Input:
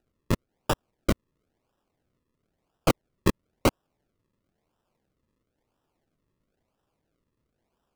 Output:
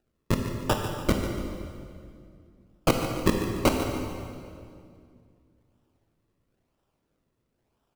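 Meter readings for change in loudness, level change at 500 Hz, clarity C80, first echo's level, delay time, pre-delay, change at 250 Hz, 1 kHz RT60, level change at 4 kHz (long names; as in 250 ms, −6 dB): +1.0 dB, +2.5 dB, 4.0 dB, −11.5 dB, 145 ms, 19 ms, +2.5 dB, 2.1 s, +2.0 dB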